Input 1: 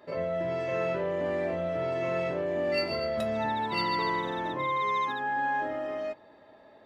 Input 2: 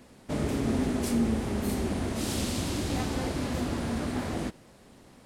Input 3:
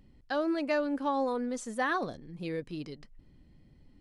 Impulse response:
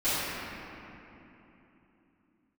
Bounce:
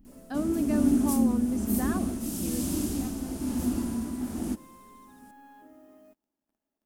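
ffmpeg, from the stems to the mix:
-filter_complex "[0:a]asoftclip=type=tanh:threshold=-28dB,acrusher=bits=8:mix=0:aa=0.000001,aeval=exprs='sgn(val(0))*max(abs(val(0))-0.00335,0)':c=same,volume=-11dB[a];[1:a]highshelf=f=4.5k:g=12,tremolo=f=1.1:d=0.45,adelay=50,volume=2dB[b];[2:a]volume=3dB[c];[a][b][c]amix=inputs=3:normalize=0,equalizer=f=125:t=o:w=1:g=-12,equalizer=f=250:t=o:w=1:g=9,equalizer=f=500:t=o:w=1:g=-11,equalizer=f=1k:t=o:w=1:g=-5,equalizer=f=2k:t=o:w=1:g=-11,equalizer=f=4k:t=o:w=1:g=-12,equalizer=f=8k:t=o:w=1:g=-5"

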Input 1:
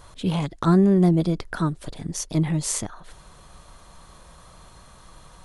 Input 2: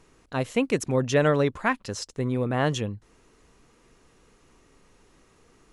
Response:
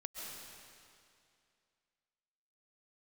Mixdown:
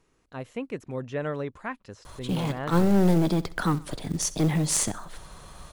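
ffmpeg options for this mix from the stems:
-filter_complex "[0:a]acrossover=split=150|3000[a][b][c];[a]acompressor=threshold=-37dB:ratio=3[d];[d][b][c]amix=inputs=3:normalize=0,acrusher=bits=6:mode=log:mix=0:aa=0.000001,aeval=exprs='clip(val(0),-1,0.075)':c=same,adelay=2050,volume=2.5dB,asplit=2[e][f];[f]volume=-19dB[g];[1:a]acrossover=split=2800[h][i];[i]acompressor=threshold=-46dB:ratio=4:attack=1:release=60[j];[h][j]amix=inputs=2:normalize=0,volume=-9.5dB,asplit=2[k][l];[l]apad=whole_len=330421[m];[e][m]sidechaincompress=threshold=-36dB:ratio=4:attack=10:release=114[n];[g]aecho=0:1:65|130|195|260|325|390:1|0.42|0.176|0.0741|0.0311|0.0131[o];[n][k][o]amix=inputs=3:normalize=0"

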